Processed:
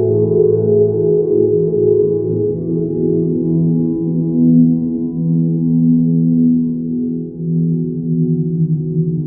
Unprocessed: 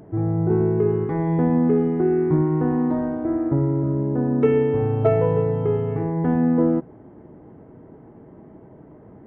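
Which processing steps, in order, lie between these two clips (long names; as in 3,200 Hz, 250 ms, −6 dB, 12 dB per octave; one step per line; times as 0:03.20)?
low-pass filter sweep 750 Hz → 180 Hz, 0:00.28–0:01.79
extreme stretch with random phases 5.8×, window 1.00 s, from 0:00.66
level +1.5 dB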